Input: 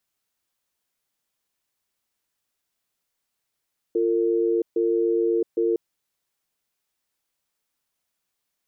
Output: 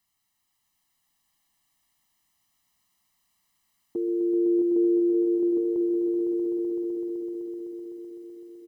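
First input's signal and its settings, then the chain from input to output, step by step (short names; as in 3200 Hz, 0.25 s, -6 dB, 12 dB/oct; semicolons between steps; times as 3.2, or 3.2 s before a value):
cadence 346 Hz, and 454 Hz, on 0.67 s, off 0.14 s, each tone -21.5 dBFS 1.81 s
dynamic EQ 290 Hz, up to -4 dB, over -37 dBFS, Q 2.4; comb 1 ms, depth 94%; on a send: swelling echo 0.127 s, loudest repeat 5, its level -7 dB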